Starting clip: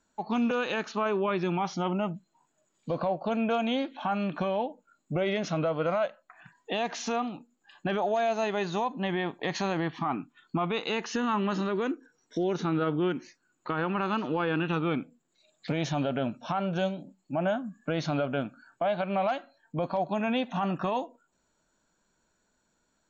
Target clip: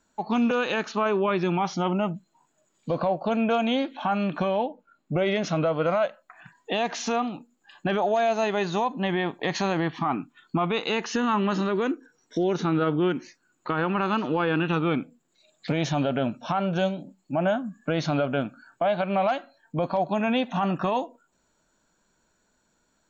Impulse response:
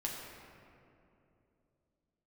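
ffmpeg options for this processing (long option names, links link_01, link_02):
-filter_complex "[0:a]asettb=1/sr,asplit=3[link_01][link_02][link_03];[link_01]atrim=end=4.694[link_04];[link_02]atrim=start=4.69:end=5.17,asetpts=PTS-STARTPTS,afade=type=in:duration=0.004:curve=qsin,afade=type=out:start_time=0.476:duration=0.004:curve=qsin,lowpass=3700[link_05];[link_03]atrim=start=5.166[link_06];[link_04][link_05]acrossfade=duration=0.004:curve1=hsin:curve2=qsin[link_07];[link_07][link_06]acrossfade=duration=0.004:curve1=qsin:curve2=hsin,volume=4dB"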